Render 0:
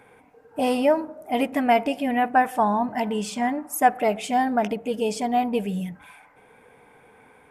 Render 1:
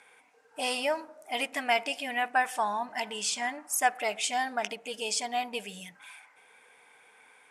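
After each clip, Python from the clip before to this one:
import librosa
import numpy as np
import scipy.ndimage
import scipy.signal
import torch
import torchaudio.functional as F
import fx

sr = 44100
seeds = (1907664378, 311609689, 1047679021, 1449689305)

y = fx.weighting(x, sr, curve='ITU-R 468')
y = y * 10.0 ** (-6.0 / 20.0)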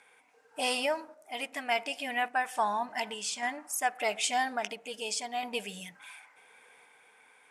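y = fx.tremolo_random(x, sr, seeds[0], hz=3.5, depth_pct=55)
y = y * 10.0 ** (1.0 / 20.0)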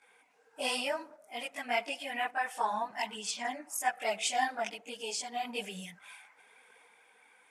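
y = fx.chorus_voices(x, sr, voices=4, hz=1.1, base_ms=20, depth_ms=3.2, mix_pct=70)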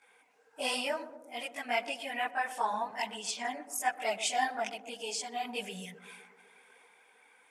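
y = fx.echo_banded(x, sr, ms=126, feedback_pct=74, hz=360.0, wet_db=-11.0)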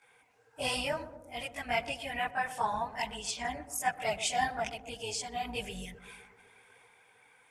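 y = fx.octave_divider(x, sr, octaves=2, level_db=-2.0)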